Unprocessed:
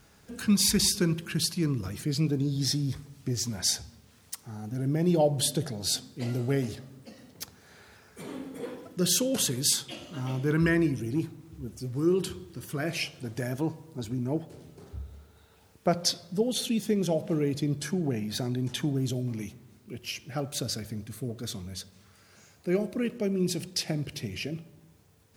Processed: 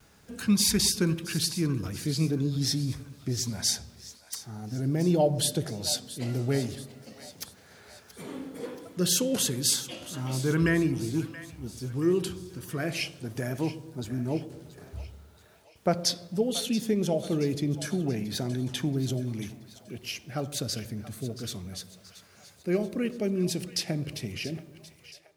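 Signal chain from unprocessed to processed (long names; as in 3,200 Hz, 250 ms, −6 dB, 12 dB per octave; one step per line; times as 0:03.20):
noise gate with hold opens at −48 dBFS
echo with a time of its own for lows and highs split 590 Hz, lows 114 ms, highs 678 ms, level −14.5 dB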